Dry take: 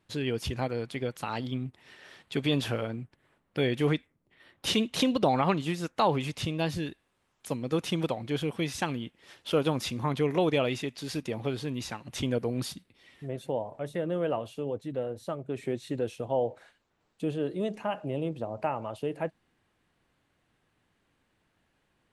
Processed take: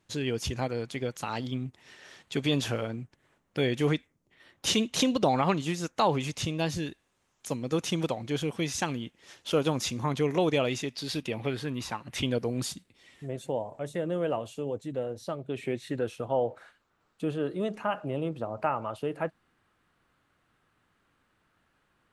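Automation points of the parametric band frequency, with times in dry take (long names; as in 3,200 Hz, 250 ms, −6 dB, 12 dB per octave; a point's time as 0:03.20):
parametric band +8.5 dB 0.58 octaves
0:10.81 6,500 Hz
0:11.93 940 Hz
0:12.50 7,200 Hz
0:15.05 7,200 Hz
0:16.07 1,300 Hz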